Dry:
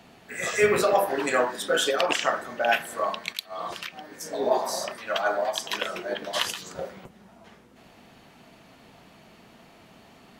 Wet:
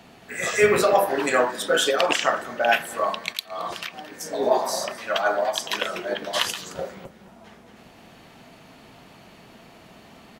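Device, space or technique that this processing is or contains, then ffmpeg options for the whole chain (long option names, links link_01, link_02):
ducked delay: -filter_complex "[0:a]asplit=3[link_01][link_02][link_03];[link_02]adelay=221,volume=-4dB[link_04];[link_03]apad=whole_len=468164[link_05];[link_04][link_05]sidechaincompress=threshold=-47dB:ratio=4:attack=7.4:release=572[link_06];[link_01][link_06]amix=inputs=2:normalize=0,volume=3dB"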